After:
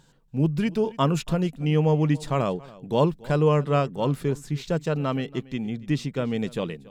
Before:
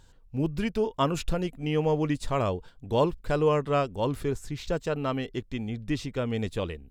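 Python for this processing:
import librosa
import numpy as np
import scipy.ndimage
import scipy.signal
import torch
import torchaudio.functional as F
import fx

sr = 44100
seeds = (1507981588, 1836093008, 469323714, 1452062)

y = fx.low_shelf_res(x, sr, hz=110.0, db=-10.0, q=3.0)
y = y + 10.0 ** (-21.0 / 20.0) * np.pad(y, (int(281 * sr / 1000.0), 0))[:len(y)]
y = y * 10.0 ** (1.5 / 20.0)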